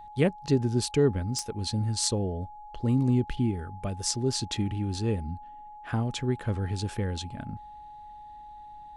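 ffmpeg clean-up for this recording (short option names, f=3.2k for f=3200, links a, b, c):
-af "adeclick=t=4,bandreject=f=840:w=30"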